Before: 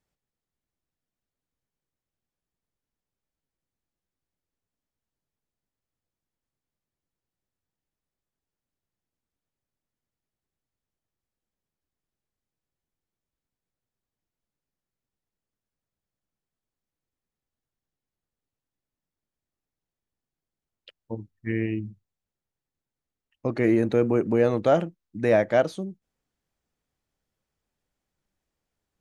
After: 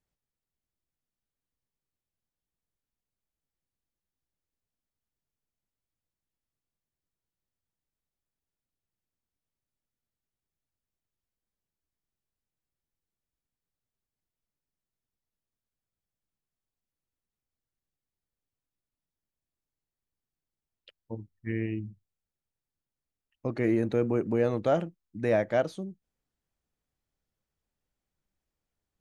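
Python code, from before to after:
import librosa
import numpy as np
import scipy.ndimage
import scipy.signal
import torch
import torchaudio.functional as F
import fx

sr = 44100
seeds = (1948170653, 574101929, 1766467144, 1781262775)

y = fx.low_shelf(x, sr, hz=110.0, db=5.0)
y = y * 10.0 ** (-5.5 / 20.0)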